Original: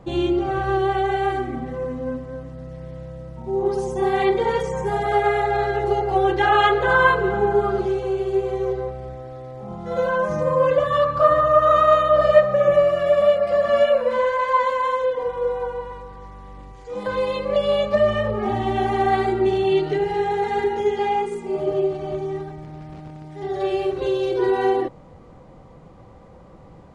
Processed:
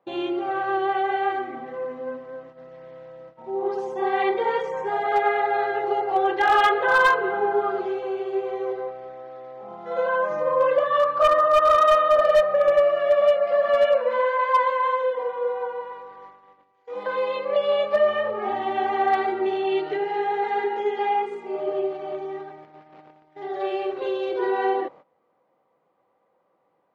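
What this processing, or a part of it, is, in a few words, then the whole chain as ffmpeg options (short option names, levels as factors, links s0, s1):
walkie-talkie: -af "highpass=470,lowpass=3000,asoftclip=type=hard:threshold=0.266,agate=range=0.141:threshold=0.00631:ratio=16:detection=peak"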